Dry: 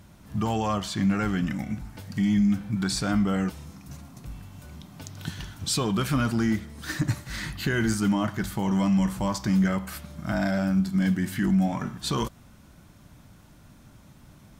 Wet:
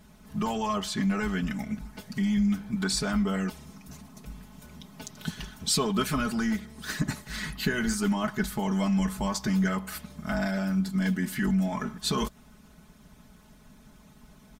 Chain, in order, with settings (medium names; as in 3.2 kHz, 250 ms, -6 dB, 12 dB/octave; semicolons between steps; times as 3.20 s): harmonic-percussive split harmonic -8 dB; comb 4.7 ms, depth 79%